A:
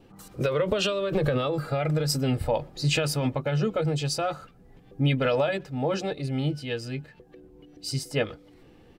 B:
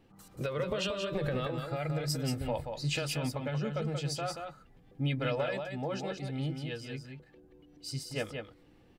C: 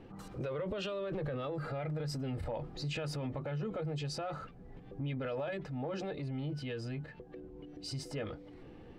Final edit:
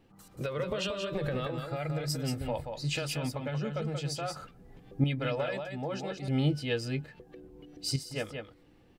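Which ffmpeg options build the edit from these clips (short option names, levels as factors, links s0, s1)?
-filter_complex "[0:a]asplit=2[s0][s1];[1:a]asplit=3[s2][s3][s4];[s2]atrim=end=4.362[s5];[s0]atrim=start=4.358:end=5.042[s6];[s3]atrim=start=5.038:end=6.282[s7];[s1]atrim=start=6.278:end=7.962[s8];[s4]atrim=start=7.958[s9];[s5][s6]acrossfade=d=0.004:c1=hsin:c2=hsin[s10];[s10][s7]acrossfade=d=0.004:c1=hsin:c2=hsin[s11];[s11][s8]acrossfade=d=0.004:c1=hsin:c2=hsin[s12];[s12][s9]acrossfade=d=0.004:c1=hsin:c2=hsin"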